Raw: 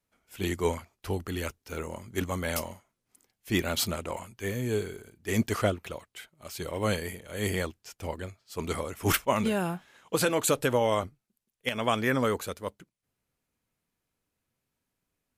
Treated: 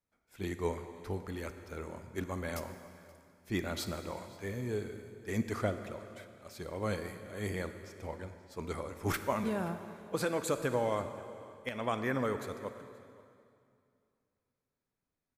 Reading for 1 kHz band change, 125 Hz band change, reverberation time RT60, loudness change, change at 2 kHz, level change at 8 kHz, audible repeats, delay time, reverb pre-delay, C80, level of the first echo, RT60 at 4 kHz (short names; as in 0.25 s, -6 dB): -6.5 dB, -6.0 dB, 2.4 s, -7.0 dB, -7.5 dB, -12.0 dB, 1, 0.527 s, 38 ms, 10.0 dB, -22.5 dB, 2.1 s